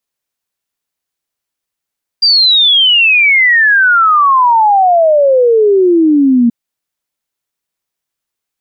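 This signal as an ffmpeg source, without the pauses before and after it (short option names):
-f lavfi -i "aevalsrc='0.562*clip(min(t,4.28-t)/0.01,0,1)*sin(2*PI*4800*4.28/log(230/4800)*(exp(log(230/4800)*t/4.28)-1))':d=4.28:s=44100"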